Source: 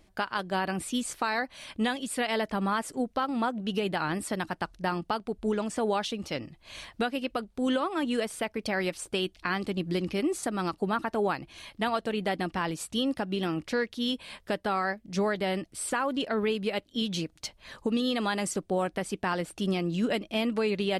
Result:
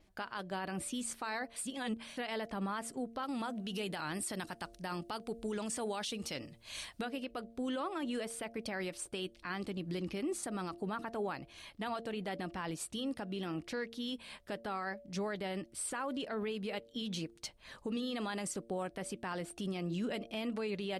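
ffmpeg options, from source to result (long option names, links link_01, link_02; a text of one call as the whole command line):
ffmpeg -i in.wav -filter_complex "[0:a]asettb=1/sr,asplit=3[link_01][link_02][link_03];[link_01]atrim=end=3.234[link_04];[link_02]atrim=start=3.23:end=7.01,asetpts=PTS-STARTPTS,afade=type=in:duration=0.004:curve=qsin,afade=type=out:start_time=3.776:duration=0.004:curve=qsin,highshelf=frequency=3100:gain=10[link_05];[link_03]atrim=start=7.006[link_06];[link_04][link_05]acrossfade=duration=0.004:curve1=hsin:curve2=qsin[link_07];[link_07][link_06]acrossfade=duration=0.004:curve1=qsin:curve2=hsin,asplit=3[link_08][link_09][link_10];[link_08]atrim=end=1.562[link_11];[link_09]atrim=start=1.558:end=2.172,asetpts=PTS-STARTPTS,areverse[link_12];[link_10]atrim=start=2.168[link_13];[link_11][link_12]acrossfade=duration=0.004:curve1=hsin:curve2=hsin[link_14];[link_14][link_13]acrossfade=duration=0.004:curve1=hsin:curve2=hsin,bandreject=frequency=114.9:width_type=h:width=4,bandreject=frequency=229.8:width_type=h:width=4,bandreject=frequency=344.7:width_type=h:width=4,bandreject=frequency=459.6:width_type=h:width=4,bandreject=frequency=574.5:width_type=h:width=4,bandreject=frequency=689.4:width_type=h:width=4,adynamicequalizer=threshold=0.00178:dfrequency=8800:dqfactor=5.3:tfrequency=8800:tqfactor=5.3:attack=5:release=100:ratio=0.375:range=2.5:mode=boostabove:tftype=bell,alimiter=limit=-23.5dB:level=0:latency=1:release=30,volume=-6dB" out.wav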